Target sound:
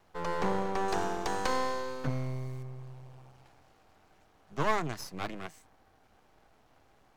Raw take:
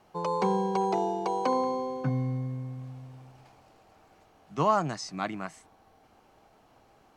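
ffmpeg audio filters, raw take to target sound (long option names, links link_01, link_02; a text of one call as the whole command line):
ffmpeg -i in.wav -filter_complex "[0:a]asettb=1/sr,asplit=3[link_01][link_02][link_03];[link_01]atrim=end=0.884[link_04];[link_02]atrim=start=0.88:end=2.63,asetpts=PTS-STARTPTS,afade=type=in:duration=0.004:curve=qsin,afade=type=out:start_time=1.746:duration=0.004:curve=qsin,highshelf=frequency=2900:gain=12[link_05];[link_03]atrim=start=2.626[link_06];[link_04][link_05]acrossfade=duration=0.004:curve1=hsin:curve2=qsin[link_07];[link_07][link_06]acrossfade=duration=0.004:curve1=qsin:curve2=hsin,acrossover=split=100[link_08][link_09];[link_09]aeval=exprs='max(val(0),0)':channel_layout=same[link_10];[link_08][link_10]amix=inputs=2:normalize=0" out.wav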